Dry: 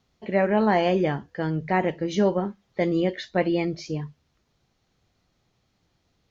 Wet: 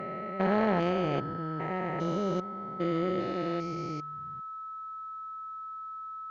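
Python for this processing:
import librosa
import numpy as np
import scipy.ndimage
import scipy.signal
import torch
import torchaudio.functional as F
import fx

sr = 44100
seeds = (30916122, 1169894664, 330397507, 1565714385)

y = fx.spec_steps(x, sr, hold_ms=400)
y = y + 10.0 ** (-33.0 / 20.0) * np.sin(2.0 * np.pi * 1300.0 * np.arange(len(y)) / sr)
y = fx.cheby_harmonics(y, sr, harmonics=(3,), levels_db=(-17,), full_scale_db=-13.0)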